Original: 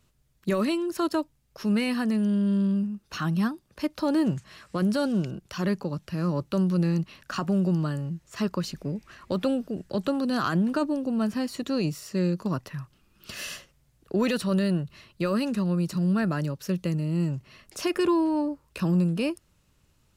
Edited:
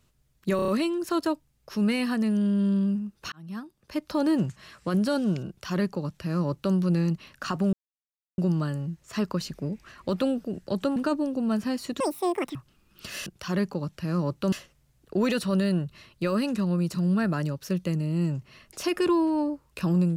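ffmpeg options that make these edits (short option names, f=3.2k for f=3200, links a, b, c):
-filter_complex "[0:a]asplit=12[a][b][c][d][e][f][g][h][i][j][k][l];[a]atrim=end=0.592[m];[b]atrim=start=0.558:end=0.592[n];[c]atrim=start=0.558:end=0.592[o];[d]atrim=start=0.558:end=0.592[p];[e]atrim=start=0.558:end=3.2,asetpts=PTS-STARTPTS,afade=t=out:st=2.638:d=0.004:c=hsin[q];[f]atrim=start=3.2:end=7.61,asetpts=PTS-STARTPTS,afade=t=in:d=0.81,afade=t=out:st=4.406:d=0.004:c=hsin,apad=pad_dur=0.65[r];[g]atrim=start=7.61:end=10.192,asetpts=PTS-STARTPTS,afade=t=in:d=0.004:c=hsin[s];[h]atrim=start=10.658:end=11.704[t];[i]atrim=start=11.7:end=12.8,asetpts=PTS-STARTPTS,asetrate=87759,aresample=44100[u];[j]atrim=start=12.796:end=13.512[v];[k]atrim=start=5.358:end=6.622[w];[l]atrim=start=13.508[x];[m][n]acrossfade=d=0.004:c1=hsin:c2=hsin[y];[y][o]acrossfade=d=0.004:c1=hsin:c2=hsin[z];[z][p]acrossfade=d=0.004:c1=hsin:c2=hsin[aa];[q][r][s]concat=n=3:v=0:a=1[ab];[aa][ab]acrossfade=d=0.004:c1=hsin:c2=hsin[ac];[ac][t]acrossfade=d=0.004:c1=hsin:c2=hsin[ad];[ad][u]acrossfade=d=0.004:c1=hsin:c2=hsin[ae];[ae][v]acrossfade=d=0.004:c1=hsin:c2=hsin[af];[af][w]acrossfade=d=0.004:c1=hsin:c2=hsin[ag];[ag][x]acrossfade=d=0.004:c1=hsin:c2=hsin"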